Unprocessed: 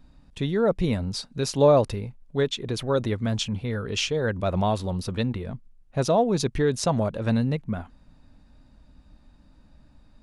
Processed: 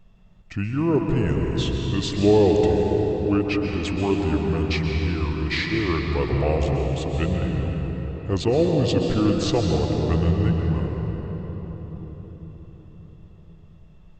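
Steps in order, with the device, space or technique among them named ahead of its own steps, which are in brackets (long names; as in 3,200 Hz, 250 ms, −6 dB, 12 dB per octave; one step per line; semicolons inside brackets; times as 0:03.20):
slowed and reverbed (speed change −28%; convolution reverb RT60 4.9 s, pre-delay 117 ms, DRR 1 dB)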